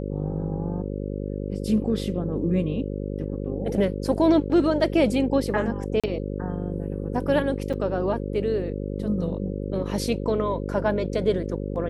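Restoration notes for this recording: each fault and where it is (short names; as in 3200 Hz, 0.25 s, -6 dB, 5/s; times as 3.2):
buzz 50 Hz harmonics 11 -30 dBFS
6–6.04 gap 36 ms
7.73–7.74 gap 6.2 ms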